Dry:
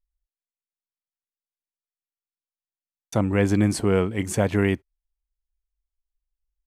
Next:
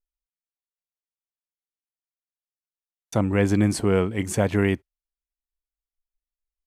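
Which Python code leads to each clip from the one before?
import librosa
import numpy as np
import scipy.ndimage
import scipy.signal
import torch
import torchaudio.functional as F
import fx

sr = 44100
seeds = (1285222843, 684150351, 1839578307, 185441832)

y = fx.noise_reduce_blind(x, sr, reduce_db=13)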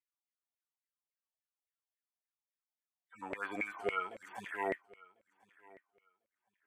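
y = fx.hpss_only(x, sr, part='harmonic')
y = fx.filter_lfo_highpass(y, sr, shape='saw_down', hz=3.6, low_hz=570.0, high_hz=2200.0, q=7.1)
y = fx.echo_feedback(y, sr, ms=1047, feedback_pct=19, wet_db=-23.5)
y = y * librosa.db_to_amplitude(-6.5)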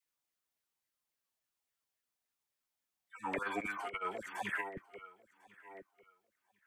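y = fx.dispersion(x, sr, late='lows', ms=54.0, hz=750.0)
y = fx.over_compress(y, sr, threshold_db=-40.0, ratio=-0.5)
y = y * librosa.db_to_amplitude(3.0)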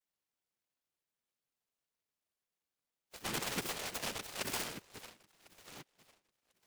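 y = fx.noise_vocoder(x, sr, seeds[0], bands=3)
y = fx.noise_mod_delay(y, sr, seeds[1], noise_hz=1800.0, depth_ms=0.26)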